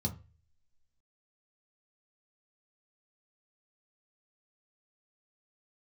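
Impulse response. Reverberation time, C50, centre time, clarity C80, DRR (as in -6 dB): 0.30 s, 16.0 dB, 9 ms, 21.0 dB, 1.5 dB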